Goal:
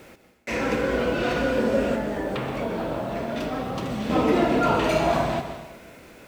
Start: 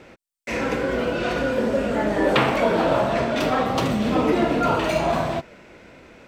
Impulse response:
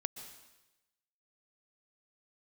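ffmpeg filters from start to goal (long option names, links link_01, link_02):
-filter_complex "[0:a]asettb=1/sr,asplit=3[link_01][link_02][link_03];[link_01]atrim=end=1.944[link_04];[link_02]atrim=start=1.94:end=4.1,asetpts=PTS-STARTPTS,afade=type=in:duration=0.004:curve=qsin,afade=type=out:start_time=2.156:duration=0.004:curve=qsin,acrossover=split=150|490[link_05][link_06][link_07];[link_05]acompressor=threshold=-36dB:ratio=4[link_08];[link_06]acompressor=threshold=-31dB:ratio=4[link_09];[link_07]acompressor=threshold=-33dB:ratio=4[link_10];[link_08][link_09][link_10]amix=inputs=3:normalize=0[link_11];[link_03]atrim=start=4.096[link_12];[link_04][link_11]acrossfade=duration=0.004:curve1=hsin:curve2=qsin[link_13];[link_13][link_12]acrossfade=duration=0.004:curve1=qsin:curve2=hsin,acrusher=bits=8:mix=0:aa=0.000001[link_14];[1:a]atrim=start_sample=2205[link_15];[link_14][link_15]afir=irnorm=-1:irlink=0"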